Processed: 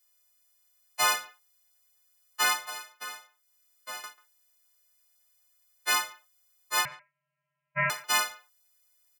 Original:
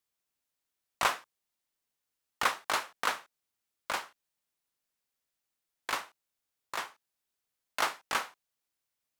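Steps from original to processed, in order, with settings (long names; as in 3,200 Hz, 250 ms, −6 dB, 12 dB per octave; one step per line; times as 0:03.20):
every partial snapped to a pitch grid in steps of 3 semitones
brickwall limiter −18.5 dBFS, peak gain reduction 9.5 dB
0:02.65–0:04.04: downward compressor 2 to 1, threshold −53 dBFS, peak gain reduction 15 dB
flanger 0.29 Hz, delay 5.2 ms, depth 9.9 ms, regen −31%
0:06.85–0:07.90: voice inversion scrambler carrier 3,100 Hz
far-end echo of a speakerphone 140 ms, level −20 dB
level +8 dB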